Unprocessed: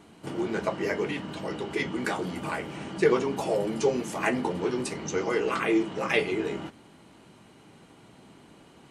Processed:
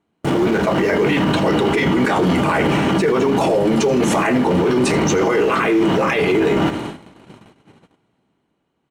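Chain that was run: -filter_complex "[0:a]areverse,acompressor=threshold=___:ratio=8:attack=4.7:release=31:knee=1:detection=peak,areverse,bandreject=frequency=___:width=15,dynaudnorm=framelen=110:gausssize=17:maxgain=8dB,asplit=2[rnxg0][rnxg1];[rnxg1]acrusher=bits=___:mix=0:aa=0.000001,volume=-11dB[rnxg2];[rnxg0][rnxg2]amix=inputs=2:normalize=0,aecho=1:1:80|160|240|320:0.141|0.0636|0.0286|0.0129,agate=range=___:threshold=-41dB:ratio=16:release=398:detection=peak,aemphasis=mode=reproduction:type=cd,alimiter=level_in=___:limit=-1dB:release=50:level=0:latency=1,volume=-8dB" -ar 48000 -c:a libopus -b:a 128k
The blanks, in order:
-35dB, 4800, 5, -35dB, 25.5dB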